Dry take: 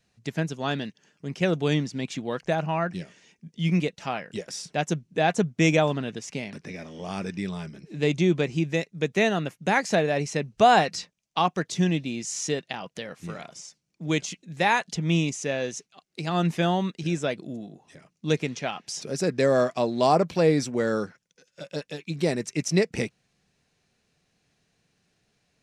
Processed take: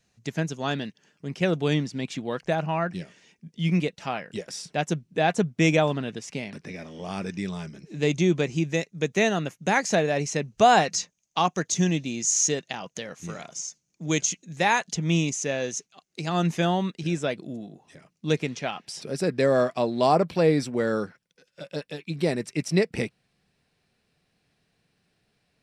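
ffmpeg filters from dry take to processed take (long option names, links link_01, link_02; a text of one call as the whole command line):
ffmpeg -i in.wav -af "asetnsamples=nb_out_samples=441:pad=0,asendcmd='0.74 equalizer g -2;7.29 equalizer g 7;10.9 equalizer g 13.5;14.56 equalizer g 7;16.65 equalizer g -1.5;18.85 equalizer g -10',equalizer=frequency=6500:width_type=o:width=0.32:gain=5" out.wav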